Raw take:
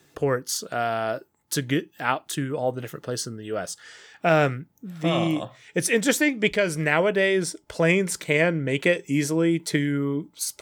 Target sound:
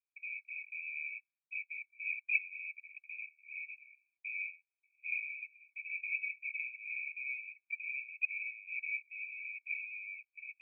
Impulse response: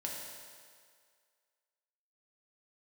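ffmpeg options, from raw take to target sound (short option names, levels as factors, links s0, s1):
-af "afftdn=nr=21:nf=-32,agate=range=0.0224:threshold=0.00316:ratio=3:detection=peak,acontrast=87,asetrate=30296,aresample=44100,atempo=1.45565,asoftclip=type=tanh:threshold=0.0133,asuperpass=centerf=2400:order=20:qfactor=6.8,volume=7.08"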